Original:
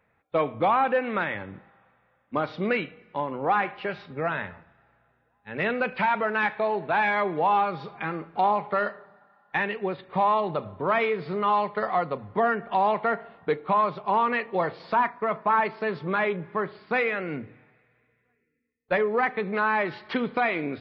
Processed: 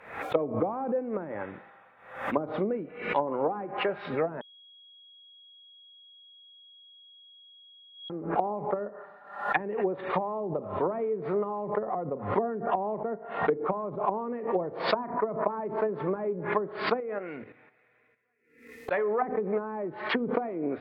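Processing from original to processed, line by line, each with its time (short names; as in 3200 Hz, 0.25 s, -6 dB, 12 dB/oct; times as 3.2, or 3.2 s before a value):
4.41–8.1 bleep 3310 Hz -13.5 dBFS
17–19.22 level quantiser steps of 10 dB
whole clip: treble ducked by the level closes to 320 Hz, closed at -23 dBFS; tone controls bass -13 dB, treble -7 dB; backwards sustainer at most 95 dB/s; gain +5 dB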